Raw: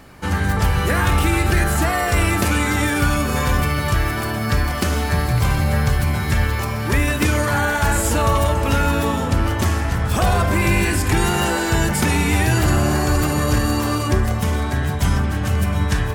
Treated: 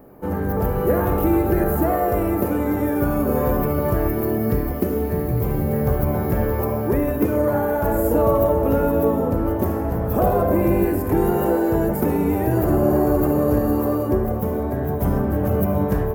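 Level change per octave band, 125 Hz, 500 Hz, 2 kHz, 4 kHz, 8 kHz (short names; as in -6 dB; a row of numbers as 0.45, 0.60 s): -5.0 dB, +5.5 dB, -13.5 dB, under -20 dB, -16.0 dB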